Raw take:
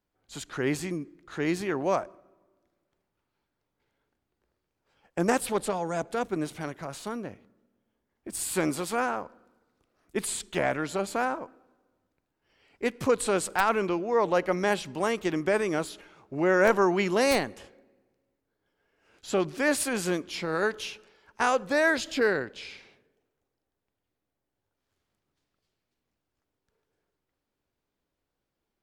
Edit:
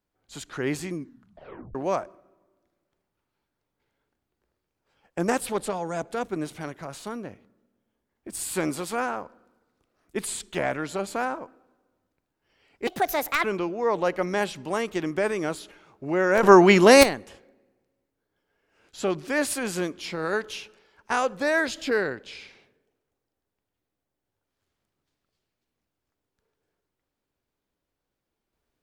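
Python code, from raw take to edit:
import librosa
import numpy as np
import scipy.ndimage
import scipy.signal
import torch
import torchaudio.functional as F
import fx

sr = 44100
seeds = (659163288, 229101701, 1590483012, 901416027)

y = fx.edit(x, sr, fx.tape_stop(start_s=0.99, length_s=0.76),
    fx.speed_span(start_s=12.87, length_s=0.87, speed=1.52),
    fx.clip_gain(start_s=16.73, length_s=0.6, db=10.5), tone=tone)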